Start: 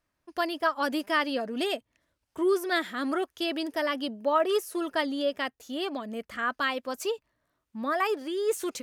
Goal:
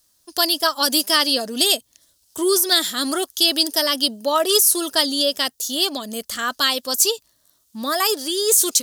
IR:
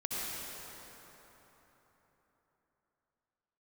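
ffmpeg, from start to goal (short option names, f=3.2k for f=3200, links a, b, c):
-af "aexciter=amount=11.4:drive=3:freq=3.4k,alimiter=level_in=8dB:limit=-1dB:release=50:level=0:latency=1,volume=-3dB"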